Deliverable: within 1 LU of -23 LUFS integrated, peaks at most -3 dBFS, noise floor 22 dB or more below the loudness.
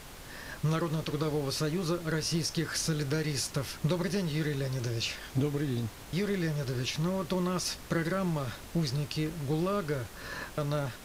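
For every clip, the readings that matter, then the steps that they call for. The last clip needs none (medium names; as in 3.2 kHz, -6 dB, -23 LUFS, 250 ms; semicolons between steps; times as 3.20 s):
noise floor -47 dBFS; noise floor target -54 dBFS; loudness -32.0 LUFS; peak level -17.5 dBFS; loudness target -23.0 LUFS
-> noise print and reduce 7 dB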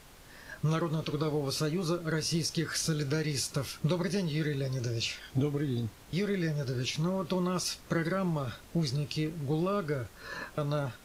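noise floor -53 dBFS; noise floor target -54 dBFS
-> noise print and reduce 6 dB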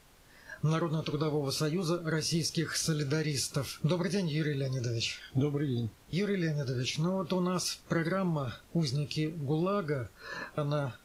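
noise floor -58 dBFS; loudness -32.0 LUFS; peak level -18.0 dBFS; loudness target -23.0 LUFS
-> trim +9 dB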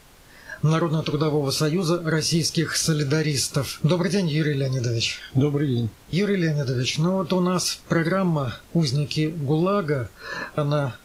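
loudness -23.0 LUFS; peak level -9.0 dBFS; noise floor -49 dBFS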